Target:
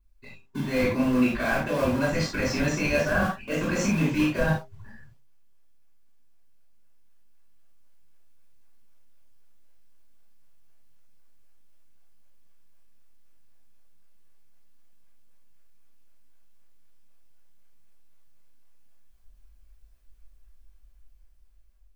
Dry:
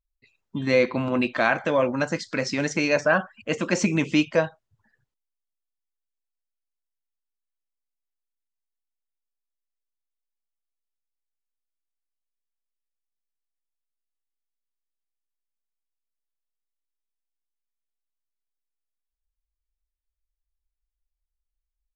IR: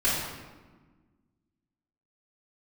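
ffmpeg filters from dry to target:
-filter_complex "[0:a]asplit=2[a][b];[b]acrusher=samples=41:mix=1:aa=0.000001:lfo=1:lforange=65.6:lforate=3.9,volume=-5.5dB[c];[a][c]amix=inputs=2:normalize=0,dynaudnorm=f=870:g=5:m=8.5dB,alimiter=limit=-10dB:level=0:latency=1,areverse,acompressor=threshold=-36dB:ratio=4,areverse,bandreject=f=133:t=h:w=4,bandreject=f=266:t=h:w=4,bandreject=f=399:t=h:w=4[d];[1:a]atrim=start_sample=2205,atrim=end_sample=4410[e];[d][e]afir=irnorm=-1:irlink=0"

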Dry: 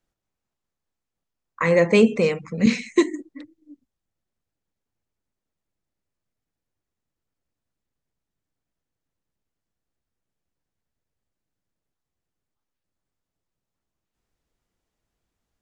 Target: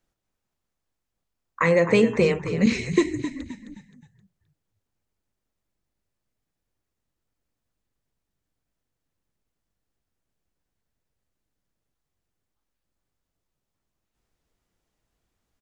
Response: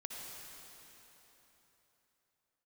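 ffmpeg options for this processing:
-filter_complex "[0:a]acompressor=threshold=-18dB:ratio=3,asplit=2[a][b];[b]asplit=4[c][d][e][f];[c]adelay=262,afreqshift=-48,volume=-10.5dB[g];[d]adelay=524,afreqshift=-96,volume=-18.7dB[h];[e]adelay=786,afreqshift=-144,volume=-26.9dB[i];[f]adelay=1048,afreqshift=-192,volume=-35dB[j];[g][h][i][j]amix=inputs=4:normalize=0[k];[a][k]amix=inputs=2:normalize=0,volume=2dB"

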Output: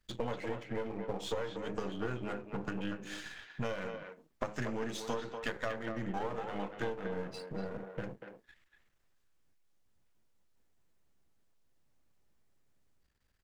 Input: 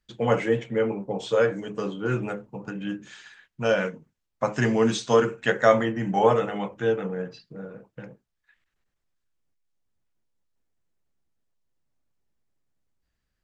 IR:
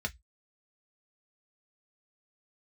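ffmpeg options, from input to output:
-filter_complex "[0:a]aeval=exprs='if(lt(val(0),0),0.251*val(0),val(0))':c=same,acompressor=threshold=-37dB:ratio=16,asplit=2[a][b];[b]adelay=240,highpass=300,lowpass=3.4k,asoftclip=type=hard:threshold=-30.5dB,volume=-6dB[c];[a][c]amix=inputs=2:normalize=0,volume=4.5dB"

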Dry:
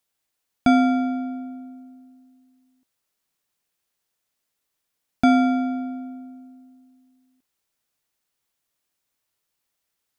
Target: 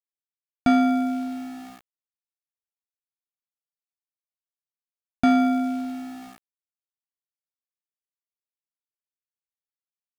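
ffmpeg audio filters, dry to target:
-af "aeval=exprs='val(0)*gte(abs(val(0)),0.0126)':c=same,acontrast=63,volume=-7dB"

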